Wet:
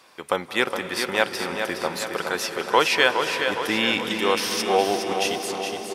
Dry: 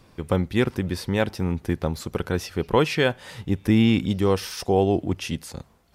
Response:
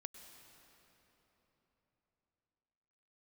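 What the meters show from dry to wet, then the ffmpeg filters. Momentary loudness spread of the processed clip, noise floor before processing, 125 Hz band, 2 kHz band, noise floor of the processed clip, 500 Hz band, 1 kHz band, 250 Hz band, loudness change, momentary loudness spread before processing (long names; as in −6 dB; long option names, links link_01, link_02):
8 LU, −56 dBFS, −17.0 dB, +8.0 dB, −41 dBFS, +0.5 dB, +6.5 dB, −7.5 dB, +1.0 dB, 10 LU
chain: -filter_complex "[0:a]highpass=850,aecho=1:1:415|830|1245|1660|2075|2490|2905:0.447|0.241|0.13|0.0703|0.038|0.0205|0.0111,asplit=2[link_01][link_02];[1:a]atrim=start_sample=2205,asetrate=24696,aresample=44100,lowshelf=frequency=460:gain=10.5[link_03];[link_02][link_03]afir=irnorm=-1:irlink=0,volume=4dB[link_04];[link_01][link_04]amix=inputs=2:normalize=0"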